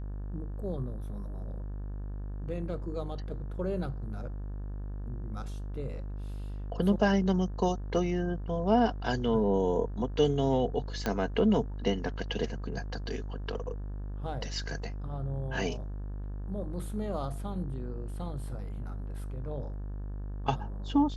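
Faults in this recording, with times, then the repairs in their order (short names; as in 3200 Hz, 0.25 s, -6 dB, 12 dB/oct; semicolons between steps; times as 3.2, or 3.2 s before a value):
buzz 50 Hz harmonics 36 -37 dBFS
11.06 pop -16 dBFS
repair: de-click; de-hum 50 Hz, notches 36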